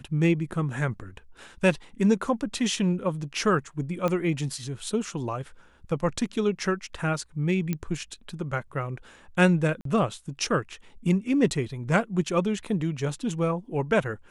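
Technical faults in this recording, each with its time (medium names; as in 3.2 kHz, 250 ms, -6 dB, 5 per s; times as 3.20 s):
4.08 s: pop -15 dBFS
7.73 s: pop -15 dBFS
9.81–9.85 s: dropout 43 ms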